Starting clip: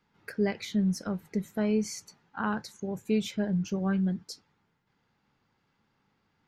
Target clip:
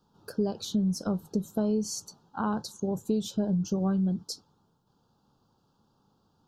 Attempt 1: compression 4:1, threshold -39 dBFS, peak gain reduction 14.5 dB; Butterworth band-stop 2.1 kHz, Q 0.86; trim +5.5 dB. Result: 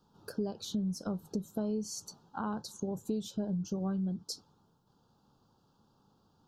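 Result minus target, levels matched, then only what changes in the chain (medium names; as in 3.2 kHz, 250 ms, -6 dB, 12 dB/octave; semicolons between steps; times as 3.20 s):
compression: peak gain reduction +7 dB
change: compression 4:1, threshold -30 dBFS, peak gain reduction 7.5 dB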